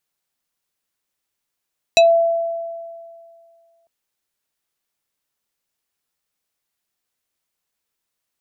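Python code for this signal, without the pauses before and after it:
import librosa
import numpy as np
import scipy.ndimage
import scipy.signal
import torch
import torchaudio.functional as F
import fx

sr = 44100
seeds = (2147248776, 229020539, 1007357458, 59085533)

y = fx.fm2(sr, length_s=1.9, level_db=-6.5, carrier_hz=670.0, ratio=4.87, index=1.4, index_s=0.15, decay_s=2.15, shape='exponential')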